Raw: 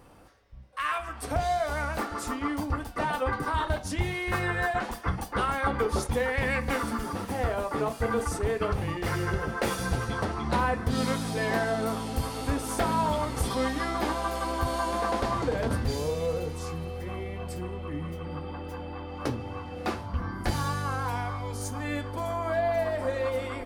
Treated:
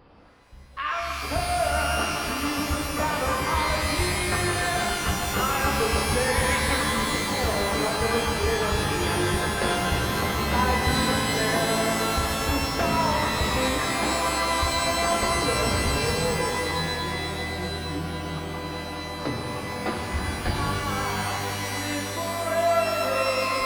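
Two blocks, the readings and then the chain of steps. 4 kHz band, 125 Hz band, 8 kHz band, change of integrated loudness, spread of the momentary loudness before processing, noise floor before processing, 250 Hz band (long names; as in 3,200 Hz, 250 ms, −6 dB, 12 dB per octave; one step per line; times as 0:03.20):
+12.0 dB, +2.5 dB, +11.0 dB, +5.0 dB, 8 LU, −41 dBFS, +3.5 dB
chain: downsampling to 11,025 Hz
reverb with rising layers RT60 3 s, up +12 semitones, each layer −2 dB, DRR 1 dB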